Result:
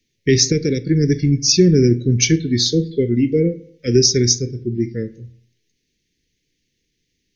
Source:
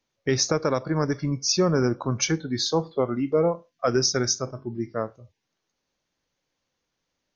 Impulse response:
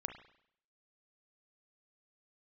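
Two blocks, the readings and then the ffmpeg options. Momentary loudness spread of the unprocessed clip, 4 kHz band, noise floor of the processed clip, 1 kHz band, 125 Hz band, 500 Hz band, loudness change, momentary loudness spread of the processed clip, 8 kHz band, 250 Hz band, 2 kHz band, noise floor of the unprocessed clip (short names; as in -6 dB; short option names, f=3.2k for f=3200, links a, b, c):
9 LU, +8.5 dB, -72 dBFS, under -25 dB, +11.5 dB, +5.5 dB, +8.5 dB, 10 LU, n/a, +10.0 dB, +4.0 dB, -80 dBFS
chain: -filter_complex "[0:a]asuperstop=centerf=910:order=12:qfactor=0.66,asplit=2[a][b];[1:a]atrim=start_sample=2205,lowshelf=f=220:g=11.5[c];[b][c]afir=irnorm=-1:irlink=0,volume=-7dB[d];[a][d]amix=inputs=2:normalize=0,volume=6dB"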